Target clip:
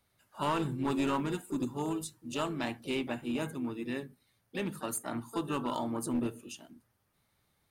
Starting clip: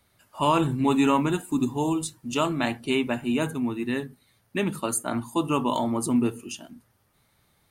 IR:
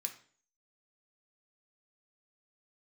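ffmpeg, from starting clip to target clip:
-filter_complex "[0:a]asplit=2[s0][s1];[s1]asetrate=58866,aresample=44100,atempo=0.749154,volume=0.282[s2];[s0][s2]amix=inputs=2:normalize=0,aeval=exprs='clip(val(0),-1,0.106)':c=same,volume=0.355"

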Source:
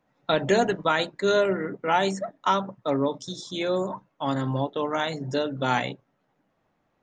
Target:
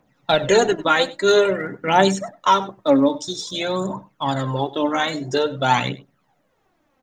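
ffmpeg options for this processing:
-af "highshelf=f=4900:g=6,aphaser=in_gain=1:out_gain=1:delay=3.9:decay=0.59:speed=0.5:type=triangular,aecho=1:1:97:0.106,volume=1.58"

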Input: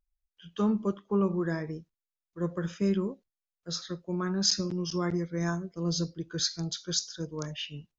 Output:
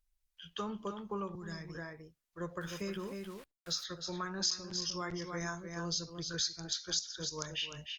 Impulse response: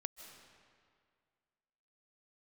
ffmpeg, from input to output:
-filter_complex "[0:a]asplit=2[s0][s1];[s1]adelay=303.2,volume=0.398,highshelf=f=4000:g=-6.82[s2];[s0][s2]amix=inputs=2:normalize=0,asettb=1/sr,asplit=3[s3][s4][s5];[s3]atrim=end=1.354[s6];[s4]atrim=start=1.35:end=1.75,asetpts=PTS-STARTPTS,afade=t=in:d=0.004:c=qsin,afade=t=out:st=0.396:d=0.004:c=qsin,acrossover=split=200|3000[s7][s8][s9];[s8]acompressor=threshold=0.00562:ratio=5[s10];[s7][s10][s9]amix=inputs=3:normalize=0[s11];[s5]atrim=start=1.746[s12];[s6][s11]acrossfade=d=0.004:c1=hsin:c2=qsin[s13];[s13][s12]acrossfade=d=0.004:c1=qsin:c2=hsin,asettb=1/sr,asplit=3[s14][s15][s16];[s14]atrim=end=2.614[s17];[s15]atrim=start=2.61:end=3.84,asetpts=PTS-STARTPTS,afade=t=in:d=0.004:c=qsin,afade=t=out:st=1.226:d=0.004:c=qsin,aeval=exprs='val(0)*gte(abs(val(0)),0.00316)':c=same[s18];[s16]atrim=start=3.836[s19];[s17][s18]acrossfade=d=0.004:c1=hsin:c2=qsin[s20];[s20][s19]acrossfade=d=0.004:c1=qsin:c2=hsin,equalizer=f=230:w=0.56:g=-14,acompressor=threshold=0.01:ratio=3,highshelf=f=2700:g=2.5,volume=1.5" -ar 48000 -c:a libopus -b:a 48k

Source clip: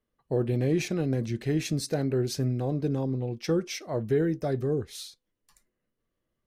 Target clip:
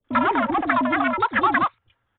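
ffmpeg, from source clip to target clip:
-filter_complex "[0:a]equalizer=f=720:w=0.96:g=10.5,asplit=2[s0][s1];[s1]aeval=exprs='0.075*(abs(mod(val(0)/0.075+3,4)-2)-1)':c=same,volume=0.501[s2];[s0][s2]amix=inputs=2:normalize=0,afreqshift=-40,acrossover=split=180|1400[s3][s4][s5];[s5]adelay=70[s6];[s4]adelay=130[s7];[s3][s7][s6]amix=inputs=3:normalize=0,asetrate=130536,aresample=44100,aresample=8000,aresample=44100,volume=1.41"

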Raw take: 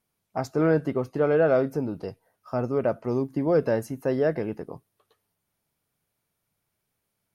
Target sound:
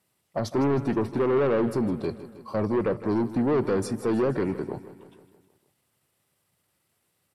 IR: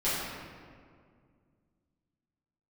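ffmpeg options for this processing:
-filter_complex "[0:a]highpass=110,equalizer=f=3300:t=o:w=0.68:g=2.5,acrossover=split=480[s0][s1];[s1]alimiter=limit=0.0631:level=0:latency=1:release=106[s2];[s0][s2]amix=inputs=2:normalize=0,asetrate=38170,aresample=44100,atempo=1.15535,asoftclip=type=tanh:threshold=0.0531,asplit=2[s3][s4];[s4]aecho=0:1:157|314|471|628|785|942:0.178|0.105|0.0619|0.0365|0.0215|0.0127[s5];[s3][s5]amix=inputs=2:normalize=0,volume=2"

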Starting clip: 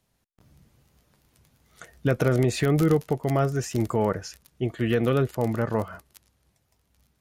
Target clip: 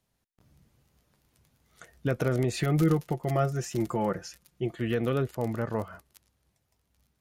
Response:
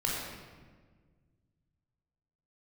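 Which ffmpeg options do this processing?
-filter_complex "[0:a]asettb=1/sr,asplit=3[s0][s1][s2];[s0]atrim=end=2.534[s3];[s1]atrim=start=2.53:end=4.8,asetpts=PTS-STARTPTS,afade=t=in:d=0.004:c=qsin,afade=t=out:st=2.266:d=0.004:c=qsin,aecho=1:1:5.7:0.6,atrim=end_sample=100107[s4];[s2]atrim=start=4.796[s5];[s3][s4]acrossfade=d=0.004:c1=hsin:c2=qsin[s6];[s6][s5]acrossfade=d=0.004:c1=qsin:c2=hsin,volume=0.562"

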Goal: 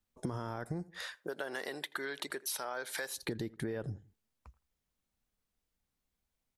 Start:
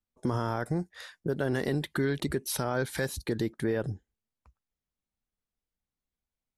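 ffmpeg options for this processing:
-filter_complex "[0:a]asettb=1/sr,asplit=3[s0][s1][s2];[s0]atrim=end=1.154[s3];[s1]atrim=start=1.15:end=3.23,asetpts=PTS-STARTPTS,afade=t=in:d=0.004:c=qsin,afade=t=out:st=2.076:d=0.004:c=qsin,highpass=650[s4];[s2]atrim=start=3.226[s5];[s3][s4]acrossfade=d=0.004:c1=hsin:c2=qsin[s6];[s6][s5]acrossfade=d=0.004:c1=qsin:c2=hsin,asplit=2[s7][s8];[s8]adelay=82,lowpass=f=2100:p=1,volume=0.0708,asplit=2[s9][s10];[s10]adelay=82,lowpass=f=2100:p=1,volume=0.31[s11];[s7][s9][s11]amix=inputs=3:normalize=0,acompressor=threshold=0.00891:ratio=5,volume=1.78"

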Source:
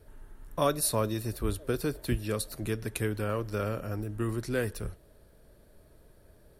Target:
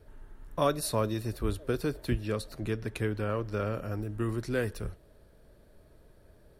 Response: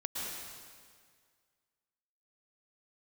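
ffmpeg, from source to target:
-af "asetnsamples=n=441:p=0,asendcmd='2.1 equalizer g -14;3.74 equalizer g -6.5',equalizer=f=12000:t=o:w=1.3:g=-8"

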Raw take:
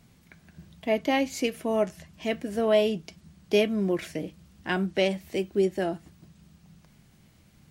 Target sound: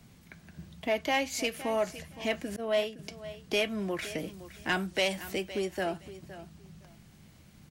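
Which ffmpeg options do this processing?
-filter_complex "[0:a]asettb=1/sr,asplit=3[s0][s1][s2];[s0]atrim=end=2.564[s3];[s1]atrim=start=2.56:end=2.99,asetpts=PTS-STARTPTS,afade=t=in:d=0.004:c=qsin,afade=t=out:st=0.426:d=0.004:c=qsin,agate=range=0.0224:threshold=0.158:ratio=3:detection=peak[s4];[s2]atrim=start=2.986[s5];[s3][s4]acrossfade=d=0.004:c1=hsin:c2=qsin[s6];[s6][s5]acrossfade=d=0.004:c1=qsin:c2=hsin,asettb=1/sr,asplit=3[s7][s8][s9];[s7]atrim=end=4.184[s10];[s8]atrim=start=4.18:end=5.32,asetpts=PTS-STARTPTS,afade=t=in:d=0.004:c=qsin,afade=t=out:st=1.136:d=0.004:c=qsin,highshelf=f=5500:g=8.5[s11];[s9]atrim=start=5.316[s12];[s10][s11]acrossfade=d=0.004:c1=hsin:c2=qsin[s13];[s13][s12]acrossfade=d=0.004:c1=qsin:c2=hsin,acrossover=split=100|640|7600[s14][s15][s16][s17];[s15]acompressor=threshold=0.0158:ratio=6[s18];[s14][s18][s16][s17]amix=inputs=4:normalize=0,asoftclip=type=tanh:threshold=0.0841,aecho=1:1:515|1030:0.178|0.032,volume=1.26"

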